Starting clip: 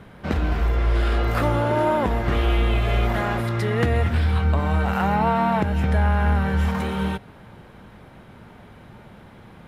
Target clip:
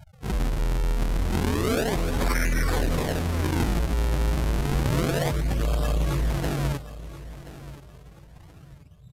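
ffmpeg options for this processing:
ffmpeg -i in.wav -filter_complex "[0:a]equalizer=frequency=1200:width=3:gain=-9,bandreject=frequency=50:width_type=h:width=6,bandreject=frequency=100:width_type=h:width=6,bandreject=frequency=150:width_type=h:width=6,bandreject=frequency=200:width_type=h:width=6,volume=21dB,asoftclip=hard,volume=-21dB,afftfilt=real='re*gte(hypot(re,im),0.0282)':imag='im*gte(hypot(re,im),0.0282)':win_size=1024:overlap=0.75,asetrate=46746,aresample=44100,acrossover=split=230|360|1700[link_01][link_02][link_03][link_04];[link_04]aexciter=amount=6.8:drive=1.5:freq=2400[link_05];[link_01][link_02][link_03][link_05]amix=inputs=4:normalize=0,acrusher=samples=37:mix=1:aa=0.000001:lfo=1:lforange=59.2:lforate=0.3,asetrate=30296,aresample=44100,atempo=1.45565,aecho=1:1:1028|2056|3084:0.168|0.0487|0.0141" out.wav

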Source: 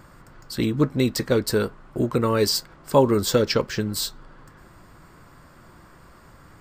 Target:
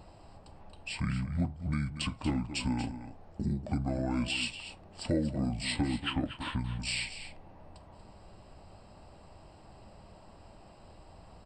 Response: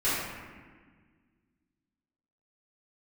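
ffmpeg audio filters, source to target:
-af "acompressor=threshold=-28dB:ratio=2.5,aecho=1:1:136:0.266,asetrate=25442,aresample=44100,volume=-4dB"

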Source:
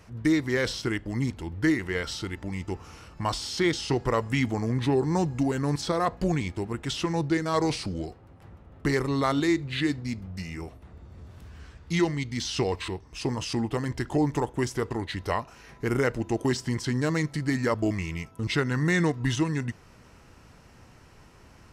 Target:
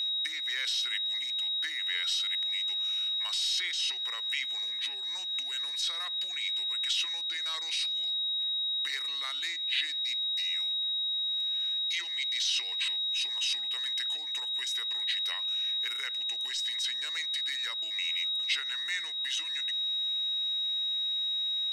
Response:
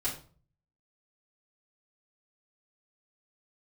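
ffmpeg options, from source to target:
-af "aeval=exprs='val(0)+0.0282*sin(2*PI*3800*n/s)':channel_layout=same,acompressor=threshold=-25dB:ratio=6,highpass=frequency=2400:width_type=q:width=1.5"

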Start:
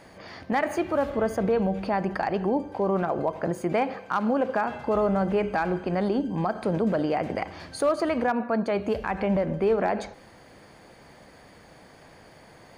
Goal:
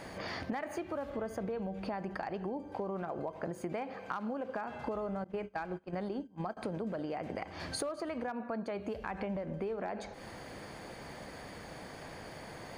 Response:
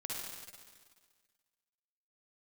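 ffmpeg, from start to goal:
-filter_complex "[0:a]asettb=1/sr,asplit=3[link_01][link_02][link_03];[link_01]atrim=end=5.244[link_04];[link_02]atrim=start=5.24:end=6.57,asetpts=PTS-STARTPTS,afade=type=in:duration=0.004:curve=qsin,afade=type=out:start_time=1.326:duration=0.004:curve=qsin,agate=range=-24dB:threshold=-25dB:ratio=16:detection=peak[link_05];[link_03]atrim=start=6.566[link_06];[link_04][link_05]acrossfade=duration=0.004:curve1=hsin:curve2=qsin[link_07];[link_07][link_06]acrossfade=duration=0.004:curve1=qsin:curve2=hsin,acompressor=threshold=-39dB:ratio=10,volume=4dB"

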